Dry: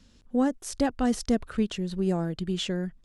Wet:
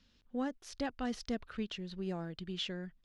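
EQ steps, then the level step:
high-frequency loss of the air 270 metres
first-order pre-emphasis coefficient 0.9
+7.5 dB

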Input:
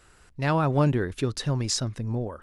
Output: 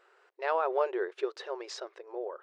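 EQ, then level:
linear-phase brick-wall high-pass 350 Hz
head-to-tape spacing loss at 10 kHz 29 dB
0.0 dB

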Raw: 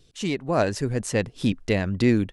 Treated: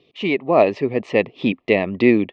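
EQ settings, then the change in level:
Butterworth band-reject 1,500 Hz, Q 2.3
loudspeaker in its box 240–3,200 Hz, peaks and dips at 390 Hz +3 dB, 650 Hz +3 dB, 1,400 Hz +5 dB, 2,400 Hz +5 dB
+6.5 dB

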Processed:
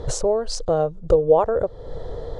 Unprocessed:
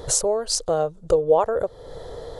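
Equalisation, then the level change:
low-pass filter 7,000 Hz 12 dB per octave
spectral tilt −2 dB per octave
0.0 dB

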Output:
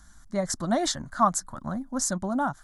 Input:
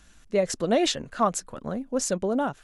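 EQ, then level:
phaser with its sweep stopped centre 1,100 Hz, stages 4
+3.5 dB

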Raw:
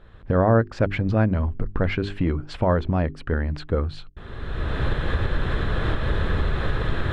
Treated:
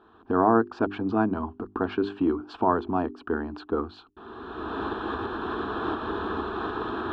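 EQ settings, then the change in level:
band-pass filter 230–2,600 Hz
phaser with its sweep stopped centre 550 Hz, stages 6
+4.5 dB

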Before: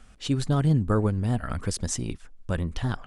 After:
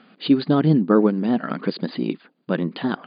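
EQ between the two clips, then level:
linear-phase brick-wall band-pass 150–4,900 Hz
parametric band 310 Hz +6.5 dB 1.2 octaves
+5.5 dB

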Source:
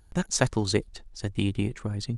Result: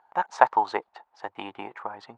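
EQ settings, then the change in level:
high-pass with resonance 860 Hz, resonance Q 4.9
low-pass filter 1,500 Hz 12 dB per octave
+5.0 dB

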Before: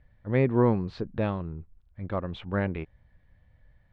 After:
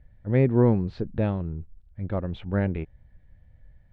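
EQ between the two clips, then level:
spectral tilt −1.5 dB per octave
parametric band 1,100 Hz −6.5 dB 0.38 octaves
0.0 dB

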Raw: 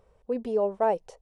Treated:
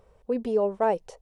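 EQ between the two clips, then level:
dynamic equaliser 700 Hz, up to −4 dB, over −36 dBFS, Q 1.3
+3.5 dB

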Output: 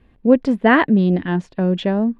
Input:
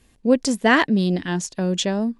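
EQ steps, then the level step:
high-frequency loss of the air 490 metres
+5.0 dB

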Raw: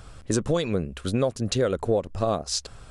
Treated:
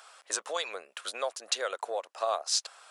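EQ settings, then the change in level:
high-pass filter 690 Hz 24 dB per octave
0.0 dB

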